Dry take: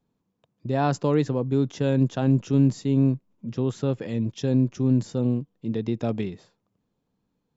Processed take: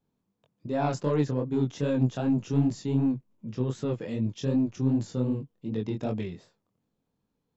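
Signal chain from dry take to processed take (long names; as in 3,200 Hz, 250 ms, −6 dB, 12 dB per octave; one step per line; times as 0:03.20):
soft clipping −12.5 dBFS, distortion −20 dB
chorus effect 2.6 Hz, delay 18.5 ms, depth 5.8 ms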